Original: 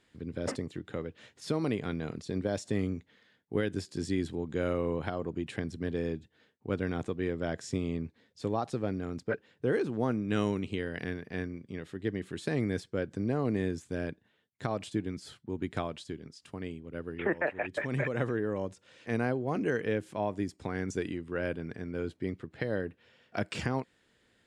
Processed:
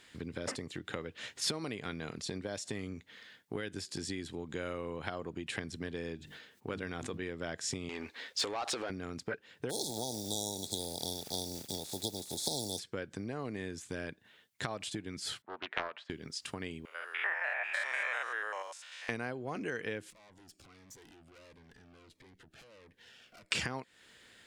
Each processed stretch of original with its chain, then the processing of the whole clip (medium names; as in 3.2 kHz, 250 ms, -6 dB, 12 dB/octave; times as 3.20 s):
6.16–7.23 s: hum notches 50/100/150/200/250/300/350 Hz + decay stretcher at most 78 dB/s
7.89–8.90 s: peaking EQ 140 Hz -15 dB 0.99 oct + compression, threshold -35 dBFS + overdrive pedal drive 19 dB, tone 4.1 kHz, clips at -25.5 dBFS
9.69–12.78 s: spectral contrast reduction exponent 0.46 + brick-wall FIR band-stop 920–3300 Hz + crackle 280 per s -48 dBFS
15.42–16.10 s: Butterworth band-pass 1.1 kHz, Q 0.85 + loudspeaker Doppler distortion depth 0.51 ms
16.85–19.09 s: spectrogram pixelated in time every 100 ms + high-pass 760 Hz 24 dB/octave
20.10–23.51 s: compression 2.5:1, threshold -55 dBFS + valve stage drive 59 dB, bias 0.7 + Shepard-style phaser falling 1.5 Hz
whole clip: compression 5:1, threshold -41 dBFS; tilt shelf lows -5.5 dB, about 900 Hz; trim +7.5 dB